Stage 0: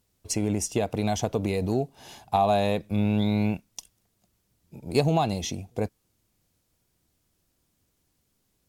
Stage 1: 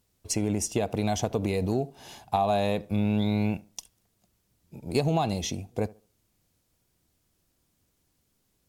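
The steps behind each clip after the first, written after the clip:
tape delay 72 ms, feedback 32%, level −20 dB, low-pass 1,400 Hz
downward compressor 3 to 1, threshold −21 dBFS, peak gain reduction 4.5 dB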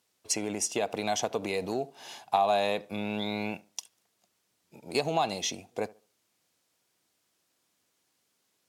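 meter weighting curve A
level +1.5 dB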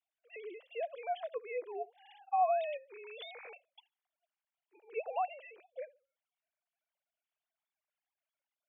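three sine waves on the formant tracks
level −7.5 dB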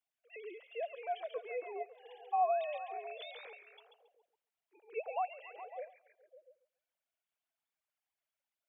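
echo through a band-pass that steps 138 ms, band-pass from 2,800 Hz, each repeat −0.7 octaves, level −5.5 dB
level −1.5 dB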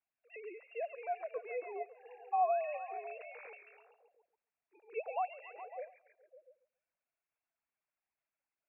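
linear-phase brick-wall low-pass 2,800 Hz

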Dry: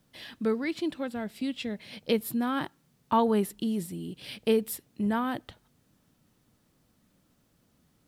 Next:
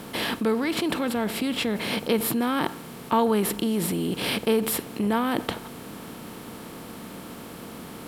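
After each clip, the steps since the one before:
compressor on every frequency bin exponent 0.6
in parallel at −1 dB: compressor whose output falls as the input rises −35 dBFS, ratio −1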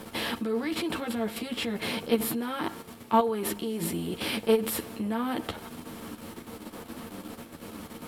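output level in coarse steps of 10 dB
multi-voice chorus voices 6, 0.6 Hz, delay 11 ms, depth 2.3 ms
level +2 dB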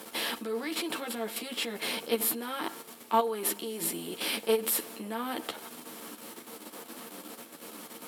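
high-pass filter 300 Hz 12 dB per octave
high-shelf EQ 4,300 Hz +8 dB
level −2.5 dB

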